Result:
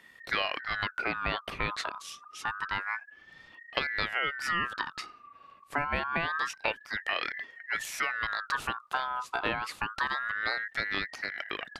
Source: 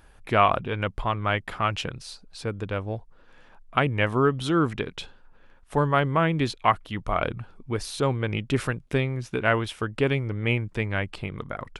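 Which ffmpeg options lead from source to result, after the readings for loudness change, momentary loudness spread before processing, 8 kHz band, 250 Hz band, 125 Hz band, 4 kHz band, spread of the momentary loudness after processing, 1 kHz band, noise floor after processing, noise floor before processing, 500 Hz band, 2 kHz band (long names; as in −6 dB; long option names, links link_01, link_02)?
−6.0 dB, 12 LU, −2.0 dB, −16.0 dB, −20.5 dB, −1.0 dB, 8 LU, −6.5 dB, −57 dBFS, −54 dBFS, −14.0 dB, +0.5 dB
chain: -af "acompressor=threshold=-24dB:ratio=6,aeval=exprs='val(0)*sin(2*PI*1500*n/s+1500*0.25/0.27*sin(2*PI*0.27*n/s))':channel_layout=same"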